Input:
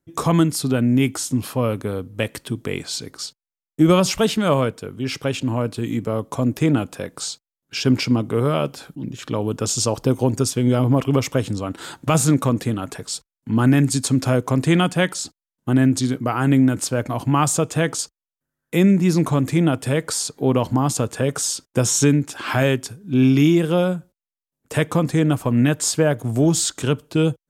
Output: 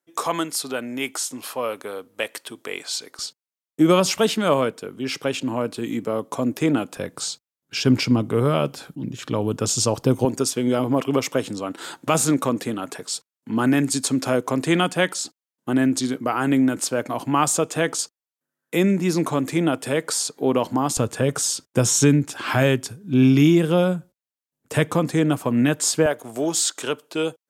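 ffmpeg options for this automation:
-af "asetnsamples=n=441:p=0,asendcmd='3.19 highpass f 220;6.97 highpass f 79;10.25 highpass f 240;20.97 highpass f 77;24.94 highpass f 180;26.06 highpass f 440',highpass=540"

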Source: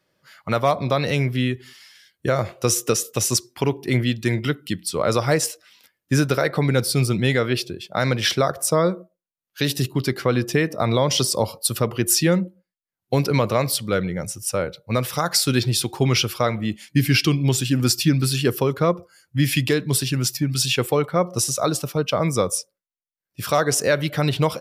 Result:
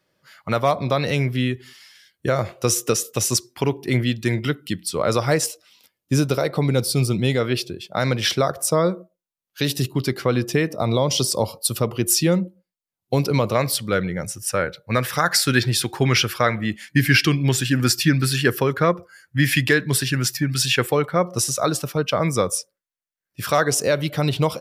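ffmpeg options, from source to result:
-af "asetnsamples=n=441:p=0,asendcmd='5.46 equalizer g -9;7.4 equalizer g -2;10.76 equalizer g -12.5;11.32 equalizer g -6;13.55 equalizer g 4.5;14.37 equalizer g 11.5;20.87 equalizer g 5;23.68 equalizer g -4.5',equalizer=f=1700:t=o:w=0.64:g=0"

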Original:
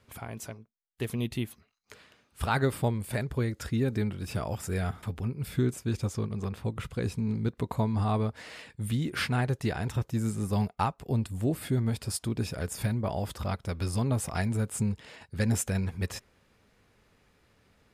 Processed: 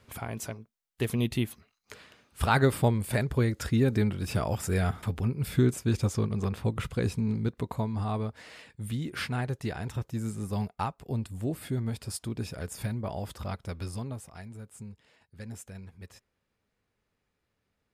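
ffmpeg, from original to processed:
-af "volume=1.5,afade=t=out:st=6.83:d=1.05:silence=0.446684,afade=t=out:st=13.71:d=0.57:silence=0.266073"

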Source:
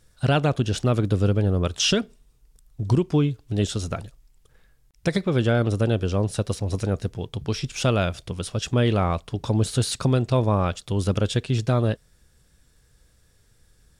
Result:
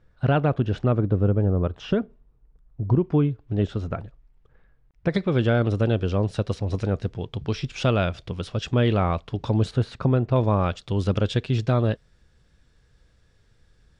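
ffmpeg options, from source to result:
-af "asetnsamples=n=441:p=0,asendcmd='0.92 lowpass f 1200;3.04 lowpass f 1800;5.14 lowpass f 3900;9.71 lowpass f 1800;10.36 lowpass f 4300',lowpass=1900"

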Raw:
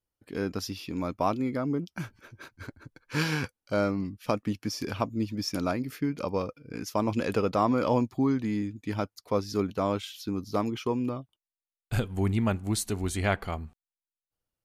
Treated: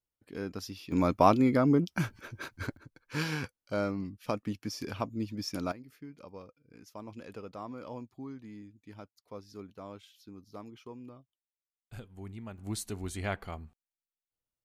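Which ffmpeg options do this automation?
-af "asetnsamples=n=441:p=0,asendcmd='0.92 volume volume 5dB;2.77 volume volume -5dB;5.72 volume volume -17.5dB;12.58 volume volume -7.5dB',volume=0.473"

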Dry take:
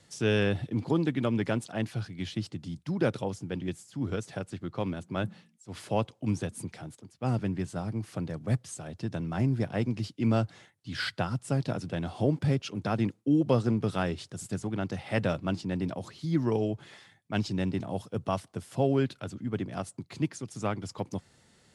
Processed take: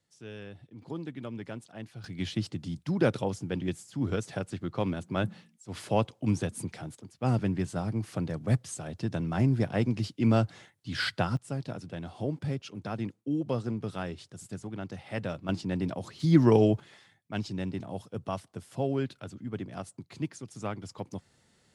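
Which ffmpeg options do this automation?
-af "asetnsamples=n=441:p=0,asendcmd='0.82 volume volume -11dB;2.04 volume volume 2dB;11.37 volume volume -6dB;15.49 volume volume 0.5dB;16.2 volume volume 7dB;16.8 volume volume -4dB',volume=0.126"

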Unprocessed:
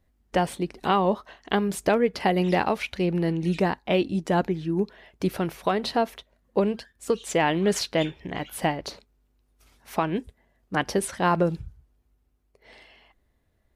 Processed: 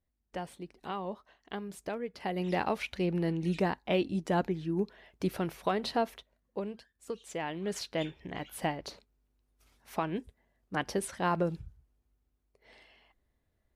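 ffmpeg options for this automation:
-af "volume=1.06,afade=t=in:st=2.15:d=0.6:silence=0.334965,afade=t=out:st=6.11:d=0.48:silence=0.398107,afade=t=in:st=7.57:d=0.61:silence=0.473151"

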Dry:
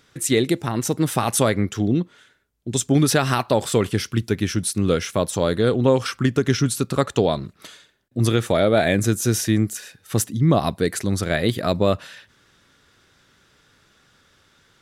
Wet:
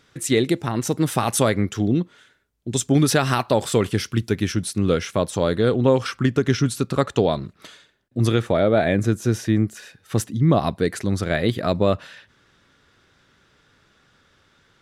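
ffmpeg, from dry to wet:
-af "asetnsamples=n=441:p=0,asendcmd='0.87 lowpass f 12000;4.52 lowpass f 5100;8.42 lowpass f 1900;9.77 lowpass f 4000',lowpass=f=6900:p=1"

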